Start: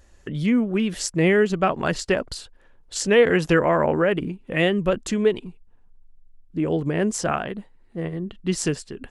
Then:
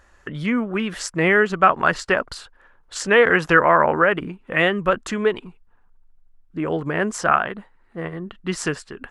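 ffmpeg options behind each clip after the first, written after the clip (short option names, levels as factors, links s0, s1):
-af "equalizer=f=1300:t=o:w=1.7:g=14.5,volume=0.668"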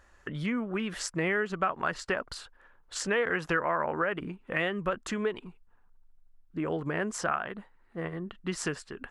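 -af "acompressor=threshold=0.0708:ratio=2.5,volume=0.531"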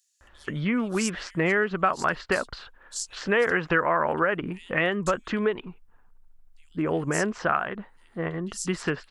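-filter_complex "[0:a]acrossover=split=4400[s0][s1];[s0]adelay=210[s2];[s2][s1]amix=inputs=2:normalize=0,volume=1.88"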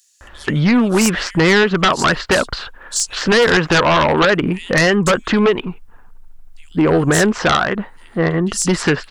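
-af "aeval=exprs='0.376*sin(PI/2*3.55*val(0)/0.376)':c=same"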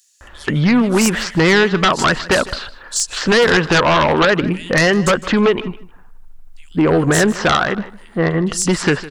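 -af "aecho=1:1:155|310:0.126|0.0227"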